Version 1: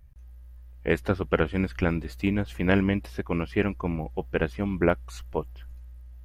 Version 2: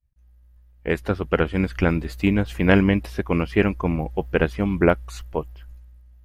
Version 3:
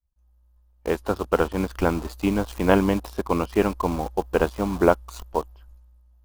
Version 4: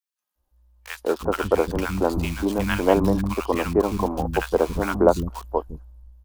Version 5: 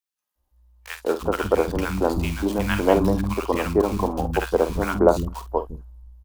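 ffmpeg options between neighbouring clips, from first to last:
ffmpeg -i in.wav -af "agate=range=-33dB:threshold=-40dB:ratio=3:detection=peak,dynaudnorm=framelen=320:gausssize=9:maxgain=11.5dB" out.wav
ffmpeg -i in.wav -filter_complex "[0:a]asplit=2[link_01][link_02];[link_02]acrusher=bits=4:mix=0:aa=0.000001,volume=-3.5dB[link_03];[link_01][link_03]amix=inputs=2:normalize=0,equalizer=frequency=125:width_type=o:width=1:gain=-12,equalizer=frequency=1000:width_type=o:width=1:gain=8,equalizer=frequency=2000:width_type=o:width=1:gain=-11,volume=-4.5dB" out.wav
ffmpeg -i in.wav -filter_complex "[0:a]acrossover=split=230|1200[link_01][link_02][link_03];[link_02]adelay=190[link_04];[link_01]adelay=350[link_05];[link_05][link_04][link_03]amix=inputs=3:normalize=0,volume=2.5dB" out.wav
ffmpeg -i in.wav -filter_complex "[0:a]asplit=2[link_01][link_02];[link_02]adelay=49,volume=-11.5dB[link_03];[link_01][link_03]amix=inputs=2:normalize=0" out.wav

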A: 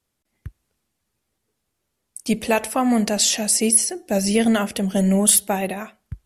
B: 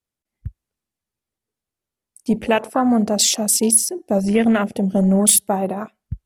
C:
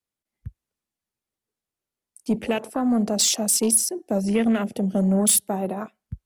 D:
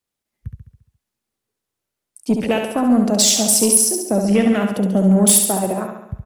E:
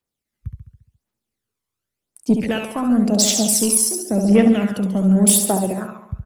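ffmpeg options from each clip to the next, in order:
ffmpeg -i in.wav -filter_complex "[0:a]afwtdn=0.0355,asplit=2[link_01][link_02];[link_02]acompressor=threshold=-26dB:ratio=6,volume=-1dB[link_03];[link_01][link_03]amix=inputs=2:normalize=0" out.wav
ffmpeg -i in.wav -filter_complex "[0:a]lowshelf=frequency=110:gain=-7,acrossover=split=140|470|2800[link_01][link_02][link_03][link_04];[link_03]alimiter=limit=-19dB:level=0:latency=1:release=403[link_05];[link_01][link_02][link_05][link_04]amix=inputs=4:normalize=0,asoftclip=type=tanh:threshold=-9dB,volume=-2dB" out.wav
ffmpeg -i in.wav -af "aecho=1:1:69|138|207|276|345|414|483:0.531|0.297|0.166|0.0932|0.0522|0.0292|0.0164,volume=5dB" out.wav
ffmpeg -i in.wav -af "aphaser=in_gain=1:out_gain=1:delay=1:decay=0.51:speed=0.91:type=triangular,volume=-3.5dB" out.wav

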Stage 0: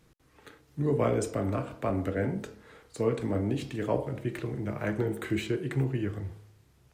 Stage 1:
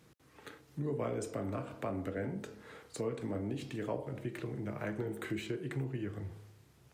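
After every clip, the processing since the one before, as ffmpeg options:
ffmpeg -i in.wav -af "highpass=89,acompressor=threshold=-42dB:ratio=2,volume=1dB" out.wav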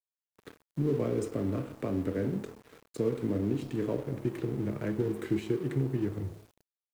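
ffmpeg -i in.wav -af "lowshelf=frequency=540:width_type=q:width=1.5:gain=7.5,aeval=exprs='sgn(val(0))*max(abs(val(0))-0.00473,0)':channel_layout=same,acrusher=bits=9:mix=0:aa=0.000001" out.wav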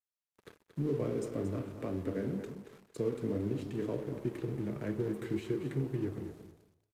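ffmpeg -i in.wav -af "flanger=delay=1.8:depth=3.4:regen=-64:speed=2:shape=sinusoidal,aecho=1:1:229|458:0.316|0.0538,aresample=32000,aresample=44100" out.wav

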